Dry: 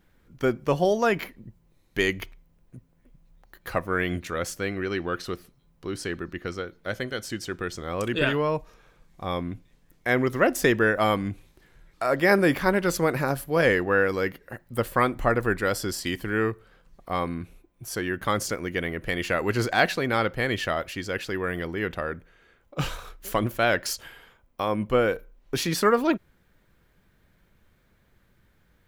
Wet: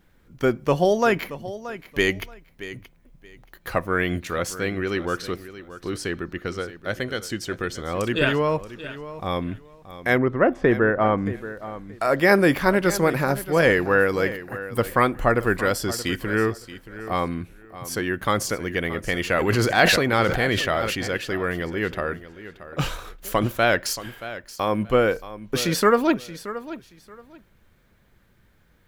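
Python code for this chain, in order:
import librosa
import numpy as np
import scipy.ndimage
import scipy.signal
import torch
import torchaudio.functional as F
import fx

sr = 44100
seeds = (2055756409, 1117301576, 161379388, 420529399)

y = fx.lowpass(x, sr, hz=1500.0, slope=12, at=(10.17, 11.25), fade=0.02)
y = fx.echo_feedback(y, sr, ms=627, feedback_pct=21, wet_db=-14.5)
y = fx.sustainer(y, sr, db_per_s=33.0, at=(19.29, 21.08))
y = F.gain(torch.from_numpy(y), 3.0).numpy()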